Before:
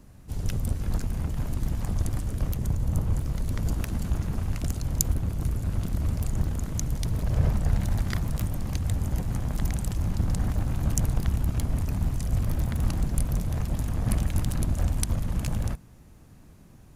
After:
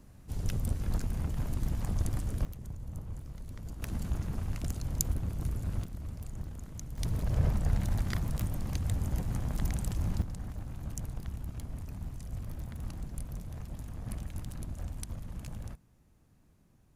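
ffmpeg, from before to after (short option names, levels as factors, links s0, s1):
-af "asetnsamples=n=441:p=0,asendcmd='2.45 volume volume -15dB;3.82 volume volume -6dB;5.84 volume volume -13.5dB;6.98 volume volume -4.5dB;10.22 volume volume -13.5dB',volume=0.631"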